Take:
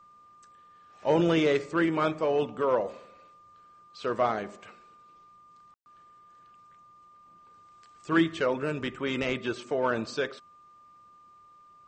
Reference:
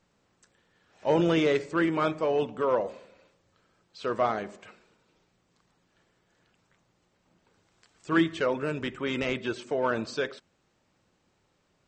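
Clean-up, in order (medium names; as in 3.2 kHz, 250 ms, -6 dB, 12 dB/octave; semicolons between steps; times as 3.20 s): band-stop 1.2 kHz, Q 30; room tone fill 5.74–5.86 s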